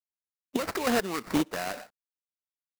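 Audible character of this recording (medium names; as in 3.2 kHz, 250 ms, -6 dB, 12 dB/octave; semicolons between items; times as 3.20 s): aliases and images of a low sample rate 3.3 kHz, jitter 20%; chopped level 2.3 Hz, depth 60%, duty 30%; a quantiser's noise floor 12-bit, dither none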